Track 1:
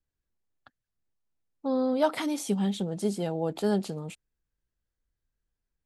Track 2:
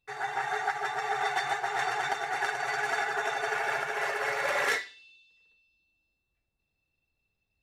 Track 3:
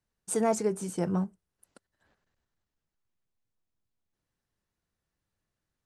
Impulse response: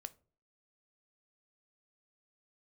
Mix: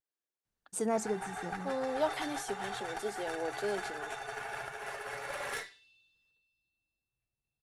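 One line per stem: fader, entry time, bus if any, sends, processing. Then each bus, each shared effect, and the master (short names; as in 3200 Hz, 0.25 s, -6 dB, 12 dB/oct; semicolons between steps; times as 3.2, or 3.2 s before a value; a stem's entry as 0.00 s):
-6.0 dB, 0.00 s, no send, HPF 320 Hz 24 dB/oct; vibrato 0.73 Hz 32 cents
-6.5 dB, 0.85 s, no send, thirty-one-band EQ 125 Hz +10 dB, 2000 Hz -4 dB, 10000 Hz +11 dB; tube stage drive 19 dB, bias 0.65
-5.0 dB, 0.45 s, no send, auto duck -11 dB, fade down 0.60 s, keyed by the first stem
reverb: off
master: dry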